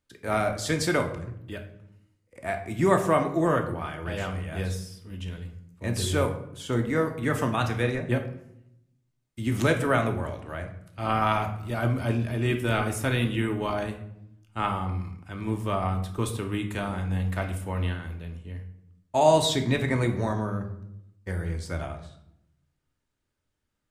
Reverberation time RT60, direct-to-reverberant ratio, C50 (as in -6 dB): 0.75 s, 4.0 dB, 10.0 dB